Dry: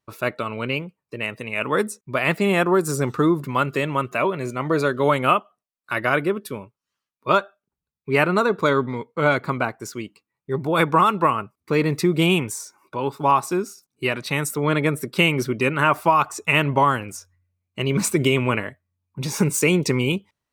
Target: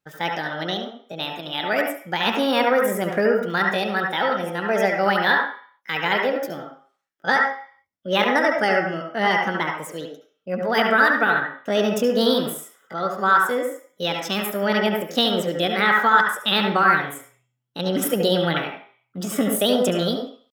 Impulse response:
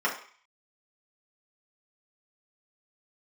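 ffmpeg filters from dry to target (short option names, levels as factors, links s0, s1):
-filter_complex "[0:a]asetrate=60591,aresample=44100,atempo=0.727827,asplit=2[s0][s1];[1:a]atrim=start_sample=2205,adelay=69[s2];[s1][s2]afir=irnorm=-1:irlink=0,volume=0.237[s3];[s0][s3]amix=inputs=2:normalize=0,volume=0.794"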